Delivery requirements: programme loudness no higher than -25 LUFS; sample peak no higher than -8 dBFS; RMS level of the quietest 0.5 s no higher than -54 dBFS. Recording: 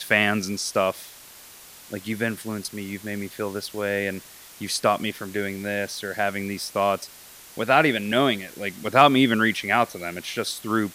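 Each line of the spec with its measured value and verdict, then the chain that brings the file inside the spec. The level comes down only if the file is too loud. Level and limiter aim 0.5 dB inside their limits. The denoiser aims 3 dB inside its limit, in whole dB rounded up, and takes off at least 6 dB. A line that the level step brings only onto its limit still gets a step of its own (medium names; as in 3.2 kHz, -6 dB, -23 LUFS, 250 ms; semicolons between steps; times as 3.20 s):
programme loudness -24.0 LUFS: fail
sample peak -1.5 dBFS: fail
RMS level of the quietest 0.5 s -46 dBFS: fail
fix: noise reduction 10 dB, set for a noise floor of -46 dBFS; trim -1.5 dB; peak limiter -8.5 dBFS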